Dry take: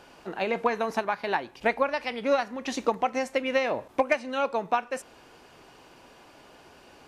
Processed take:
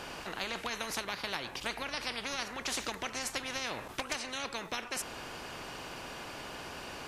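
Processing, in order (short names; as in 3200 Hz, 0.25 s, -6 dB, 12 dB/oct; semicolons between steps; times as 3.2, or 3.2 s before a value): spectral compressor 4:1; gain -6 dB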